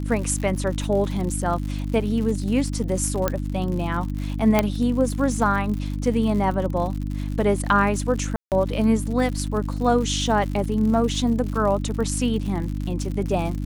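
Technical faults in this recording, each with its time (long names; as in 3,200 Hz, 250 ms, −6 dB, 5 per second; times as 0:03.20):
surface crackle 100 per second −30 dBFS
mains hum 50 Hz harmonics 6 −27 dBFS
0:03.28: click −7 dBFS
0:04.59: click −4 dBFS
0:08.36–0:08.52: drop-out 158 ms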